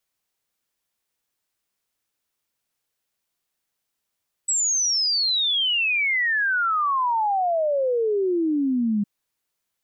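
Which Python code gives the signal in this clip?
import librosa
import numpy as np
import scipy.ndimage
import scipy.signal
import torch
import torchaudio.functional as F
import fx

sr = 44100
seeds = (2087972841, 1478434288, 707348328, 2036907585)

y = fx.ess(sr, length_s=4.56, from_hz=7900.0, to_hz=200.0, level_db=-19.0)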